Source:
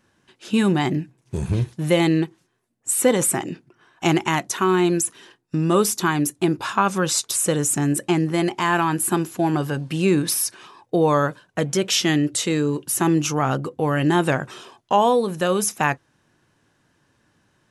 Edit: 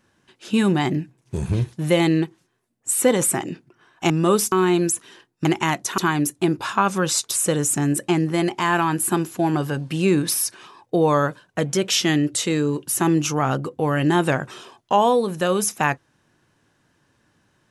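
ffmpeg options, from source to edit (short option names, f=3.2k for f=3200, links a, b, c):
-filter_complex "[0:a]asplit=5[a][b][c][d][e];[a]atrim=end=4.102[f];[b]atrim=start=5.558:end=5.982[g];[c]atrim=start=4.628:end=5.562[h];[d]atrim=start=4.098:end=4.632[i];[e]atrim=start=5.978[j];[f][g]acrossfade=d=0.004:c1=hsin:c2=hsin[k];[k][h]acrossfade=d=0.004:c1=hsin:c2=hsin[l];[l][i]acrossfade=d=0.004:c1=hsin:c2=hsin[m];[m][j]acrossfade=d=0.004:c1=hsin:c2=hsin"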